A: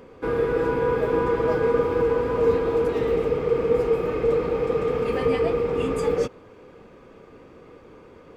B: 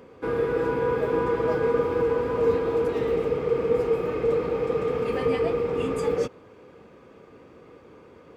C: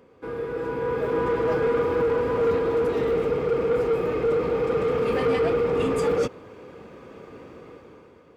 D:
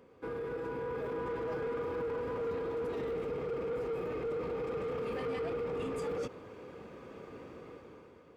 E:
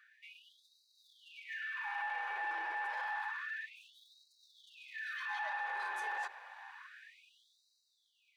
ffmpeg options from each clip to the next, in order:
-af "highpass=63,volume=-2dB"
-af "dynaudnorm=f=220:g=9:m=14dB,asoftclip=type=tanh:threshold=-11dB,volume=-6dB"
-af "alimiter=level_in=2.5dB:limit=-24dB:level=0:latency=1:release=38,volume=-2.5dB,volume=-5dB"
-af "aeval=exprs='val(0)*sin(2*PI*1300*n/s)':c=same,afftfilt=real='re*gte(b*sr/1024,330*pow(3800/330,0.5+0.5*sin(2*PI*0.29*pts/sr)))':imag='im*gte(b*sr/1024,330*pow(3800/330,0.5+0.5*sin(2*PI*0.29*pts/sr)))':win_size=1024:overlap=0.75"

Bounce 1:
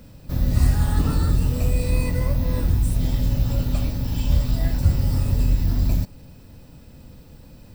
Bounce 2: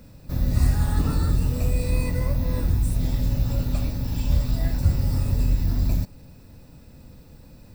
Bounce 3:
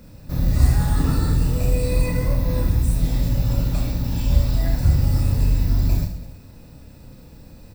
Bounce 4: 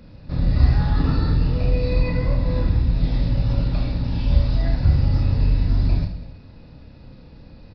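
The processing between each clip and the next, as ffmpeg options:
-af "bandreject=f=3.1k:w=10,volume=-2dB"
-af "aecho=1:1:30|72|130.8|213.1|328.4:0.631|0.398|0.251|0.158|0.1,volume=1.5dB"
-af "aresample=11025,aresample=44100"

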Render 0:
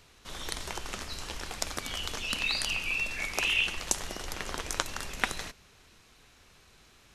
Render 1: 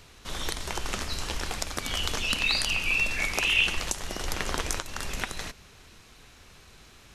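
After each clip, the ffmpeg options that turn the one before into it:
-af "lowshelf=f=190:g=3,alimiter=limit=-14.5dB:level=0:latency=1:release=343,volume=5.5dB"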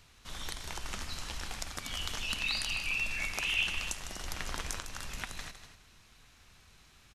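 -filter_complex "[0:a]equalizer=f=420:w=1.1:g=-6.5,asplit=2[a][b];[b]aecho=0:1:154.5|242:0.282|0.251[c];[a][c]amix=inputs=2:normalize=0,volume=-7.5dB"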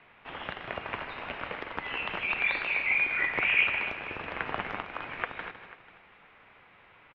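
-af "aecho=1:1:491:0.119,highpass=f=340:t=q:w=0.5412,highpass=f=340:t=q:w=1.307,lowpass=f=2.9k:t=q:w=0.5176,lowpass=f=2.9k:t=q:w=0.7071,lowpass=f=2.9k:t=q:w=1.932,afreqshift=-270,volume=8.5dB"

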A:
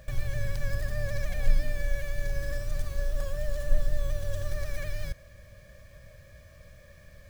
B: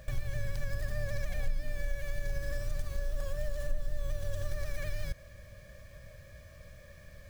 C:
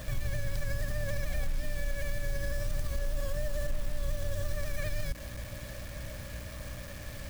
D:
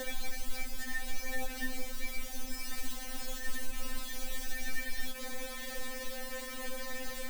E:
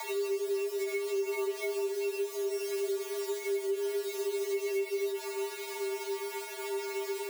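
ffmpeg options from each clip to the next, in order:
-af "acompressor=threshold=-29dB:ratio=3"
-af "alimiter=level_in=8dB:limit=-24dB:level=0:latency=1:release=73,volume=-8dB,acrusher=bits=8:mix=0:aa=0.000001,aeval=exprs='val(0)+0.00224*(sin(2*PI*60*n/s)+sin(2*PI*2*60*n/s)/2+sin(2*PI*3*60*n/s)/3+sin(2*PI*4*60*n/s)/4+sin(2*PI*5*60*n/s)/5)':c=same,volume=8dB"
-filter_complex "[0:a]acrossover=split=87|880[a][b][c];[a]acompressor=threshold=-43dB:ratio=4[d];[b]acompressor=threshold=-46dB:ratio=4[e];[c]acompressor=threshold=-47dB:ratio=4[f];[d][e][f]amix=inputs=3:normalize=0,afftfilt=real='re*3.46*eq(mod(b,12),0)':imag='im*3.46*eq(mod(b,12),0)':win_size=2048:overlap=0.75,volume=10.5dB"
-af "bandreject=f=60:t=h:w=6,bandreject=f=120:t=h:w=6,bandreject=f=180:t=h:w=6,bandreject=f=240:t=h:w=6,afreqshift=390,acompressor=threshold=-29dB:ratio=4"

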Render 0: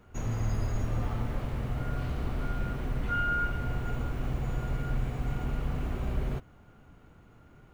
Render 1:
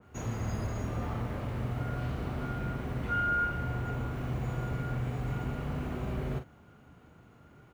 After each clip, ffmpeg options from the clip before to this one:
-filter_complex "[0:a]highpass=73,asplit=2[a][b];[b]adelay=40,volume=-8dB[c];[a][c]amix=inputs=2:normalize=0,adynamicequalizer=threshold=0.00398:dfrequency=2600:dqfactor=0.7:tfrequency=2600:tqfactor=0.7:attack=5:release=100:ratio=0.375:range=2:mode=cutabove:tftype=highshelf"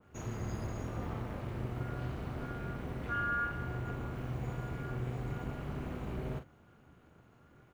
-af "tremolo=f=250:d=0.71,volume=-1.5dB"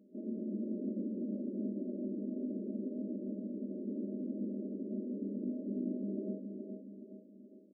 -af "afftfilt=real='re*between(b*sr/4096,190,630)':imag='im*between(b*sr/4096,190,630)':win_size=4096:overlap=0.75,aecho=1:1:1:0.75,aecho=1:1:420|840|1260|1680|2100:0.501|0.221|0.097|0.0427|0.0188,volume=5.5dB"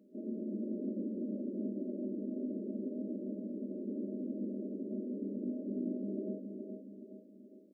-af "highpass=200,volume=1.5dB"

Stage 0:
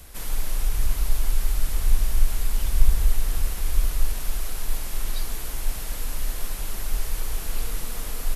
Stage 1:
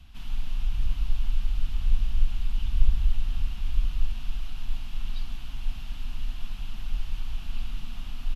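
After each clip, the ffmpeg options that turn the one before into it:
-af "firequalizer=gain_entry='entry(240,0);entry(450,-25);entry(710,-8);entry(1300,-7);entry(2000,-11);entry(2800,2);entry(4100,-7);entry(8600,-24)':delay=0.05:min_phase=1,volume=-3dB"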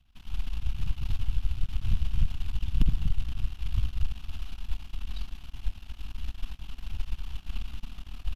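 -filter_complex "[0:a]asplit=2[a][b];[b]aeval=exprs='clip(val(0),-1,0.168)':c=same,volume=-8.5dB[c];[a][c]amix=inputs=2:normalize=0,aeval=exprs='0.562*(cos(1*acos(clip(val(0)/0.562,-1,1)))-cos(1*PI/2))+0.112*(cos(3*acos(clip(val(0)/0.562,-1,1)))-cos(3*PI/2))+0.0501*(cos(7*acos(clip(val(0)/0.562,-1,1)))-cos(7*PI/2))+0.0891*(cos(8*acos(clip(val(0)/0.562,-1,1)))-cos(8*PI/2))':c=same,volume=-5dB"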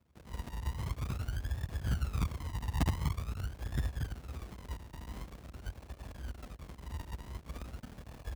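-af "acrusher=samples=36:mix=1:aa=0.000001:lfo=1:lforange=21.6:lforate=0.46,aeval=exprs='abs(val(0))':c=same,highpass=f=59:w=0.5412,highpass=f=59:w=1.3066"

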